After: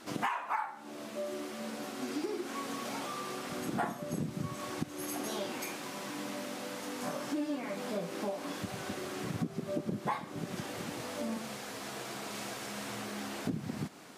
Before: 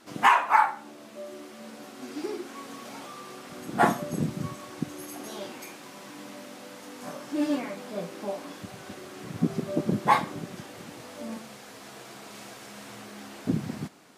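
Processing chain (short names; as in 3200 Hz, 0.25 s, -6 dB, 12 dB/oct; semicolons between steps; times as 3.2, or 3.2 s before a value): compressor 6:1, threshold -36 dBFS, peak gain reduction 20.5 dB; gain +3.5 dB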